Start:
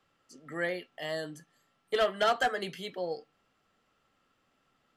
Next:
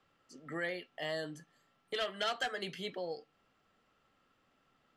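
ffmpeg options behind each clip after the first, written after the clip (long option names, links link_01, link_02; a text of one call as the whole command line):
ffmpeg -i in.wav -filter_complex "[0:a]acrossover=split=2100[link_01][link_02];[link_01]alimiter=level_in=6.5dB:limit=-24dB:level=0:latency=1:release=305,volume=-6.5dB[link_03];[link_03][link_02]amix=inputs=2:normalize=0,highshelf=frequency=9000:gain=-11.5" out.wav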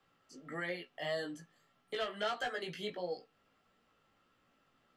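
ffmpeg -i in.wav -filter_complex "[0:a]acrossover=split=250|1900[link_01][link_02][link_03];[link_03]alimiter=level_in=12dB:limit=-24dB:level=0:latency=1:release=90,volume=-12dB[link_04];[link_01][link_02][link_04]amix=inputs=3:normalize=0,flanger=delay=16.5:depth=2.5:speed=1.6,volume=3dB" out.wav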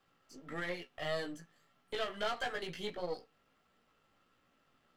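ffmpeg -i in.wav -af "aeval=exprs='if(lt(val(0),0),0.447*val(0),val(0))':channel_layout=same,volume=2.5dB" out.wav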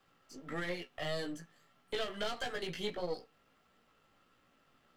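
ffmpeg -i in.wav -filter_complex "[0:a]acrossover=split=460|3000[link_01][link_02][link_03];[link_02]acompressor=threshold=-42dB:ratio=6[link_04];[link_01][link_04][link_03]amix=inputs=3:normalize=0,volume=3dB" out.wav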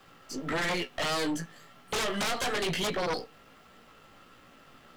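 ffmpeg -i in.wav -af "aeval=exprs='0.0668*sin(PI/2*4.47*val(0)/0.0668)':channel_layout=same,volume=-2.5dB" out.wav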